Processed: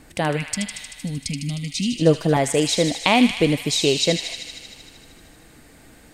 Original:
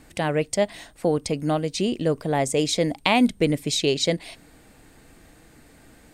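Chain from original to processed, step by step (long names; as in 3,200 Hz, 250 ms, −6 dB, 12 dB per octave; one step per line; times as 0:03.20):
0:00.37–0:01.97: gain on a spectral selection 300–1,900 Hz −25 dB
0:01.97–0:02.37: comb filter 6.1 ms, depth 90%
on a send: delay with a high-pass on its return 77 ms, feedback 78%, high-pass 1,700 Hz, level −6.5 dB
on the sum: level +2.5 dB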